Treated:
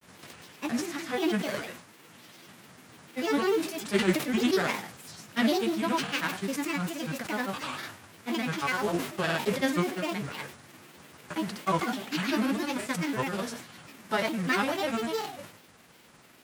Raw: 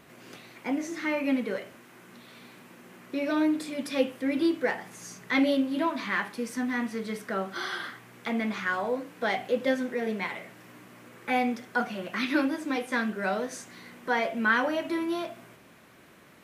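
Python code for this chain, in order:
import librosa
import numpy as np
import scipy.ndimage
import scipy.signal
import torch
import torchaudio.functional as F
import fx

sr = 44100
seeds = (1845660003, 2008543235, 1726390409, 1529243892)

y = fx.envelope_flatten(x, sr, power=0.6)
y = fx.granulator(y, sr, seeds[0], grain_ms=100.0, per_s=20.0, spray_ms=100.0, spread_st=7)
y = fx.sustainer(y, sr, db_per_s=100.0)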